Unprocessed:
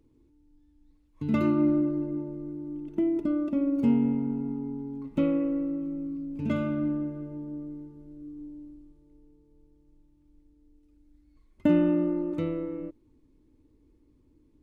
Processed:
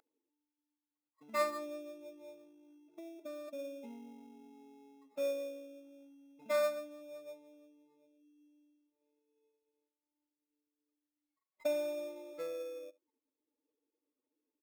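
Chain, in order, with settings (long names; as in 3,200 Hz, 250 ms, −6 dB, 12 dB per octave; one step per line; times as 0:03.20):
expanding power law on the bin magnitudes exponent 1.9
on a send: single-tap delay 72 ms −23.5 dB
on the sum: dynamic equaliser 980 Hz, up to −4 dB, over −42 dBFS, Q 0.73
high-pass filter 730 Hz 24 dB per octave
comb filter 1.5 ms, depth 70%
in parallel at −4 dB: sample-rate reduction 3,000 Hz, jitter 0%
on the sum: level +9.5 dB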